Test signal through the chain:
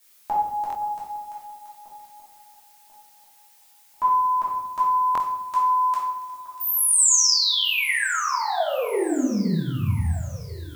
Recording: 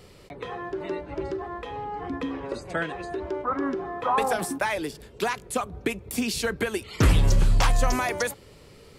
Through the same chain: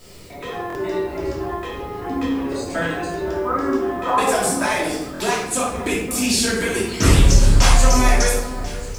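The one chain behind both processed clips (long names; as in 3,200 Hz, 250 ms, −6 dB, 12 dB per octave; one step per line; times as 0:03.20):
parametric band 7,400 Hz +10.5 dB 1.5 octaves
background noise blue −59 dBFS
delay that swaps between a low-pass and a high-pass 520 ms, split 1,600 Hz, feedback 63%, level −13 dB
rectangular room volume 270 cubic metres, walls mixed, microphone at 2.8 metres
buffer that repeats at 0:00.68/0:05.13, samples 1,024, times 2
level −3 dB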